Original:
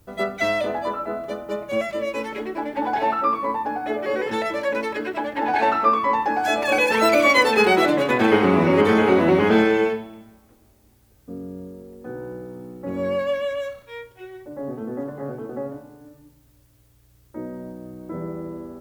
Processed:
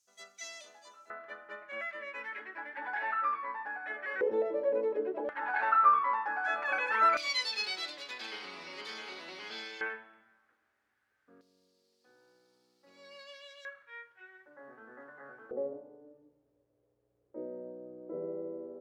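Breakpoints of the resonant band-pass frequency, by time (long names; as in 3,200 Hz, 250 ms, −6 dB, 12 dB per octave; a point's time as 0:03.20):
resonant band-pass, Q 4.3
6,300 Hz
from 0:01.10 1,700 Hz
from 0:04.21 470 Hz
from 0:05.29 1,400 Hz
from 0:07.17 4,700 Hz
from 0:09.81 1,600 Hz
from 0:11.41 4,600 Hz
from 0:13.65 1,600 Hz
from 0:15.51 480 Hz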